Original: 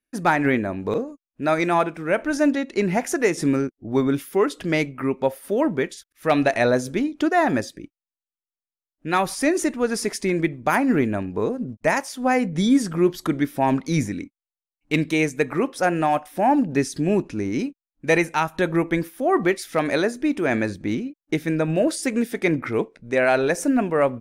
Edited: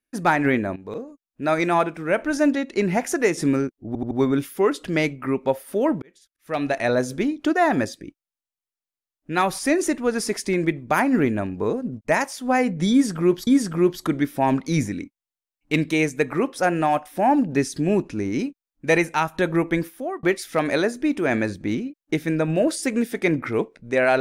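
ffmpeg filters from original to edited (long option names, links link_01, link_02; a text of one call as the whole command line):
ffmpeg -i in.wav -filter_complex "[0:a]asplit=8[link_01][link_02][link_03][link_04][link_05][link_06][link_07][link_08];[link_01]atrim=end=0.76,asetpts=PTS-STARTPTS,afade=type=out:start_time=0.756:duration=0.004:curve=hsin:silence=0.211349[link_09];[link_02]atrim=start=0.76:end=3.952,asetpts=PTS-STARTPTS,afade=type=in:duration=0.82:silence=0.211349[link_10];[link_03]atrim=start=3.868:end=3.952[link_11];[link_04]atrim=start=3.868:end=3.952[link_12];[link_05]atrim=start=3.868:end=5.78,asetpts=PTS-STARTPTS,afade=type=out:start_time=1.908:duration=0.004:curve=hsin[link_13];[link_06]atrim=start=5.78:end=13.232,asetpts=PTS-STARTPTS,afade=type=in:duration=1.13[link_14];[link_07]atrim=start=12.668:end=19.43,asetpts=PTS-STARTPTS,afade=type=out:start_time=6.392:duration=0.37[link_15];[link_08]atrim=start=19.43,asetpts=PTS-STARTPTS,afade=type=in:duration=0.004:curve=hsin[link_16];[link_09][link_10]concat=n=2:v=0:a=1[link_17];[link_17][link_11]acrossfade=duration=0.004:curve1=hsin:curve2=hsin[link_18];[link_18][link_12]acrossfade=duration=0.004:curve1=hsin:curve2=hsin[link_19];[link_13][link_14]concat=n=2:v=0:a=1[link_20];[link_19][link_20]acrossfade=duration=0.004:curve1=hsin:curve2=hsin[link_21];[link_15][link_16]concat=n=2:v=0:a=1[link_22];[link_21][link_22]acrossfade=duration=0.004:curve1=hsin:curve2=hsin" out.wav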